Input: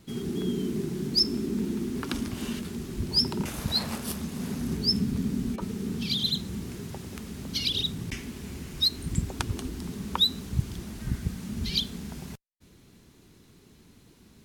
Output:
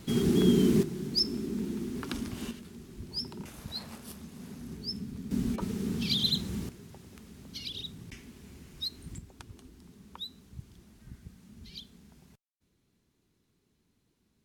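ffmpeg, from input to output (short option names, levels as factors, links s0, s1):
-af "asetnsamples=n=441:p=0,asendcmd='0.83 volume volume -4.5dB;2.51 volume volume -12dB;5.31 volume volume -0.5dB;6.69 volume volume -11.5dB;9.18 volume volume -18dB',volume=2.11"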